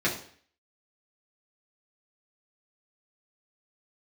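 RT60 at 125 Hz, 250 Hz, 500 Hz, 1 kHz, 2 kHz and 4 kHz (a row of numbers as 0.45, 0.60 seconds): 0.55, 0.50, 0.50, 0.50, 0.55, 0.50 seconds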